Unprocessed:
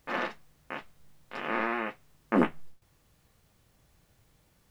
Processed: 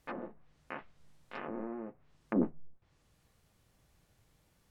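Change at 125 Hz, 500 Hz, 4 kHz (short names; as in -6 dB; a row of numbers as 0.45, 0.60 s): -4.0 dB, -7.0 dB, under -15 dB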